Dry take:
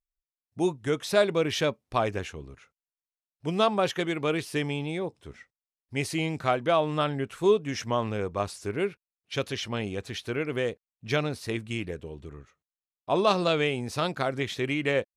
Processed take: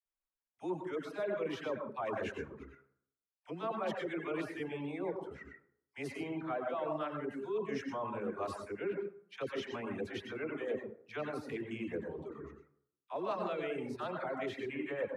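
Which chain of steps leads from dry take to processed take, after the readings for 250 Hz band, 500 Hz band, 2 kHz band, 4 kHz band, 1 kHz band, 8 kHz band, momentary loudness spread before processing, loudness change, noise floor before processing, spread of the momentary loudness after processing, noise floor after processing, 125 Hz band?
-9.5 dB, -10.0 dB, -11.0 dB, -17.5 dB, -10.5 dB, under -15 dB, 11 LU, -11.0 dB, under -85 dBFS, 8 LU, under -85 dBFS, -16.0 dB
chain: reverse; compressor 10:1, threshold -34 dBFS, peak gain reduction 17.5 dB; reverse; plate-style reverb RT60 0.69 s, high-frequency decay 0.45×, pre-delay 80 ms, DRR 0.5 dB; reverb removal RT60 0.95 s; three-band isolator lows -13 dB, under 200 Hz, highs -15 dB, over 2300 Hz; dispersion lows, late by 57 ms, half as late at 620 Hz; gain +1 dB

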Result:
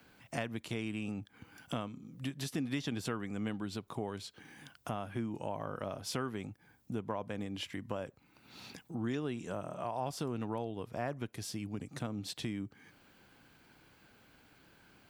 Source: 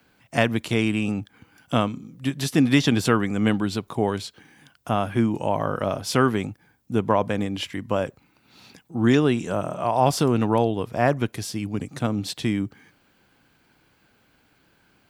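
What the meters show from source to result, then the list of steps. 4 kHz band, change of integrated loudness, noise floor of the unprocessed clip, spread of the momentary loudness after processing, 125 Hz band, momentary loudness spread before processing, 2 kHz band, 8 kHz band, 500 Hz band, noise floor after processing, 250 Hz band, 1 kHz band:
-13.5 dB, -16.0 dB, -63 dBFS, 11 LU, -15.5 dB, 10 LU, -16.0 dB, -12.5 dB, -16.5 dB, -67 dBFS, -16.0 dB, -16.5 dB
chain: compressor 2.5:1, threshold -41 dBFS, peak gain reduction 18 dB; gain -1 dB

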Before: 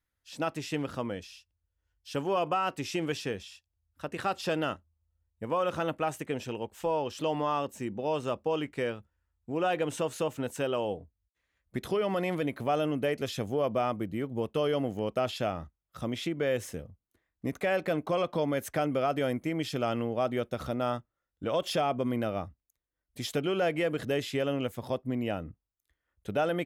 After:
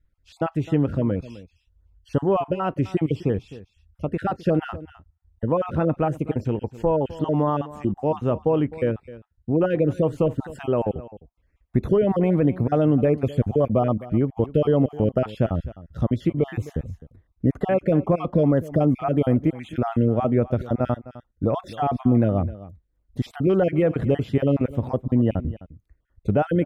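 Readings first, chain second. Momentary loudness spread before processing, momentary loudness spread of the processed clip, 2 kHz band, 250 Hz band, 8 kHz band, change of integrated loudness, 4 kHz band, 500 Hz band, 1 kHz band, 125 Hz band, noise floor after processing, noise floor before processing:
10 LU, 10 LU, -2.0 dB, +11.5 dB, under -10 dB, +8.5 dB, n/a, +7.5 dB, +3.5 dB, +15.0 dB, -69 dBFS, under -85 dBFS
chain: random spectral dropouts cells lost 30%; tilt -4 dB/oct; on a send: echo 0.258 s -17.5 dB; on the sum: dynamic EQ 5300 Hz, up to -7 dB, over -54 dBFS, Q 0.74; gain +5 dB

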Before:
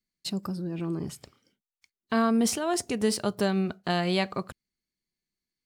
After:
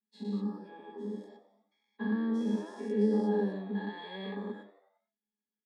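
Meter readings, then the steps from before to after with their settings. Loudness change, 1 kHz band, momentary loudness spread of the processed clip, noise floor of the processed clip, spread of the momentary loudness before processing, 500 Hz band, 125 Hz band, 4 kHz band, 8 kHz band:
-5.5 dB, -11.5 dB, 15 LU, under -85 dBFS, 11 LU, -4.5 dB, n/a, -16.0 dB, under -25 dB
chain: spectral dilation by 0.24 s; notch 520 Hz, Q 12; compressor 1.5:1, threshold -25 dBFS, peak gain reduction 3.5 dB; Chebyshev high-pass 200 Hz, order 6; octave resonator G#, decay 0.14 s; frequency-shifting echo 91 ms, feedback 52%, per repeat +92 Hz, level -17 dB; gain +2.5 dB

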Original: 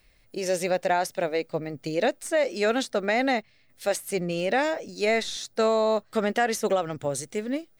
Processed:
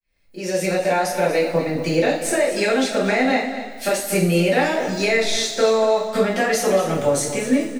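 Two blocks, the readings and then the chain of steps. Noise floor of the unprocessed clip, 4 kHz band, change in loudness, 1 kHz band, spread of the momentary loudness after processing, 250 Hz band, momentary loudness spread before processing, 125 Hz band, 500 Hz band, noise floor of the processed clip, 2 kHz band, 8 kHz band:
-61 dBFS, +8.0 dB, +6.5 dB, +4.5 dB, 5 LU, +8.5 dB, 7 LU, +11.5 dB, +6.5 dB, -35 dBFS, +6.5 dB, +9.5 dB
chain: opening faded in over 1.38 s; compressor, threshold -28 dBFS, peak gain reduction 9.5 dB; echo 0.238 s -12 dB; two-slope reverb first 0.43 s, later 2.3 s, from -16 dB, DRR -9 dB; gain +4 dB

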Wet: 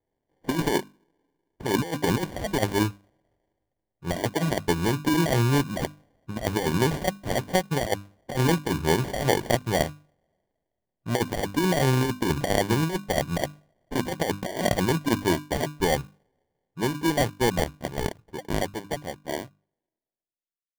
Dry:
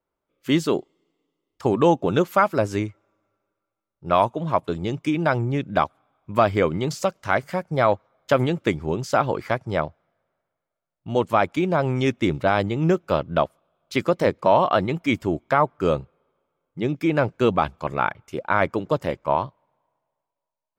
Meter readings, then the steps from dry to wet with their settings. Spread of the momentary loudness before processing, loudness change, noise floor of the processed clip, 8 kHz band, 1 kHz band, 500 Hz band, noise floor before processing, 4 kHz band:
8 LU, -3.5 dB, under -85 dBFS, +9.0 dB, -7.0 dB, -5.5 dB, -84 dBFS, +3.0 dB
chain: ending faded out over 6.44 s; notches 50/100/150/200/250/300 Hz; negative-ratio compressor -22 dBFS, ratio -0.5; sample-rate reducer 1300 Hz, jitter 0%; mismatched tape noise reduction decoder only

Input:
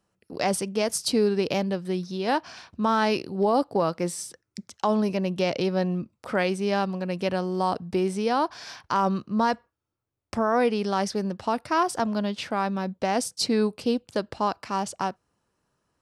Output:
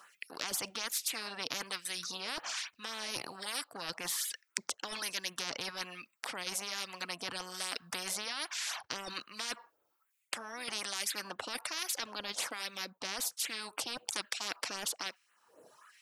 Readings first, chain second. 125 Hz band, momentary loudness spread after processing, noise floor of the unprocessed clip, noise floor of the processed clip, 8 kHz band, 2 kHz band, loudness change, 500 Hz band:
-25.5 dB, 5 LU, -78 dBFS, -78 dBFS, 0.0 dB, -5.5 dB, -11.0 dB, -22.5 dB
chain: LFO high-pass sine 1.2 Hz 550–2300 Hz; reverb removal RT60 0.85 s; low shelf 400 Hz +9.5 dB; reverse; compressor 6:1, threshold -29 dBFS, peak gain reduction 15.5 dB; reverse; LFO notch sine 3.8 Hz 540–5600 Hz; spectral compressor 10:1; gain +8.5 dB

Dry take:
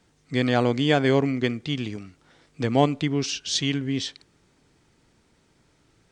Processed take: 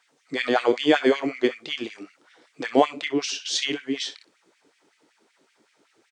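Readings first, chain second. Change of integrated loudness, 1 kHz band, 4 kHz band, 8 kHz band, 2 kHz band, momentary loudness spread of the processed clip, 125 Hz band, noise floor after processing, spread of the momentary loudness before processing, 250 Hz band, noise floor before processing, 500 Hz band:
0.0 dB, +1.5 dB, +1.0 dB, 0.0 dB, +2.0 dB, 13 LU, -20.0 dB, -67 dBFS, 9 LU, -2.0 dB, -64 dBFS, +1.5 dB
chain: early reflections 27 ms -10 dB, 63 ms -15 dB; LFO high-pass sine 5.3 Hz 300–2400 Hz; gain -1 dB

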